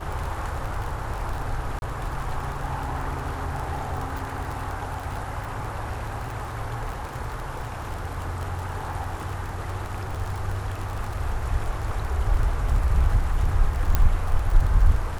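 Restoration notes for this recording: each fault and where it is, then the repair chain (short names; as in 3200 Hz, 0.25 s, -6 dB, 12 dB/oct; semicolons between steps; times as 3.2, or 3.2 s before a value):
crackle 27/s -28 dBFS
1.79–1.82 gap 31 ms
13.95 pop -7 dBFS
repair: de-click; interpolate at 1.79, 31 ms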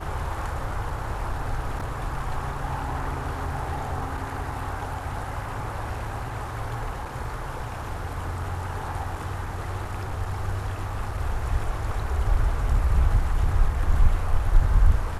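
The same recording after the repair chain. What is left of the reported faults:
none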